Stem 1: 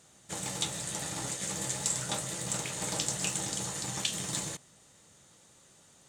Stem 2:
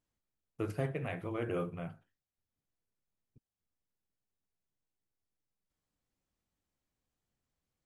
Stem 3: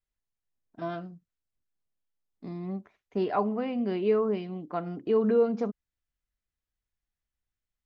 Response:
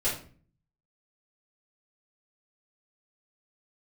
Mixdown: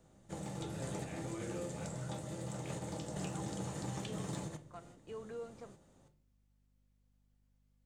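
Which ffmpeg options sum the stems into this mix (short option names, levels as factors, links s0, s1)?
-filter_complex "[0:a]tiltshelf=f=1300:g=9.5,volume=0.891,asplit=2[s0][s1];[s1]volume=0.0708[s2];[1:a]alimiter=level_in=2.82:limit=0.0631:level=0:latency=1,volume=0.355,volume=0.562,asplit=2[s3][s4];[s4]volume=0.447[s5];[2:a]highpass=f=1200:p=1,acontrast=72,aeval=exprs='val(0)+0.00224*(sin(2*PI*50*n/s)+sin(2*PI*2*50*n/s)/2+sin(2*PI*3*50*n/s)/3+sin(2*PI*4*50*n/s)/4+sin(2*PI*5*50*n/s)/5)':c=same,volume=0.112,asplit=2[s6][s7];[s7]apad=whole_len=268149[s8];[s0][s8]sidechaingate=range=0.355:threshold=0.00112:ratio=16:detection=peak[s9];[3:a]atrim=start_sample=2205[s10];[s2][s5]amix=inputs=2:normalize=0[s11];[s11][s10]afir=irnorm=-1:irlink=0[s12];[s9][s3][s6][s12]amix=inputs=4:normalize=0,acrossover=split=590|1900[s13][s14][s15];[s13]acompressor=threshold=0.01:ratio=4[s16];[s14]acompressor=threshold=0.00316:ratio=4[s17];[s15]acompressor=threshold=0.00316:ratio=4[s18];[s16][s17][s18]amix=inputs=3:normalize=0"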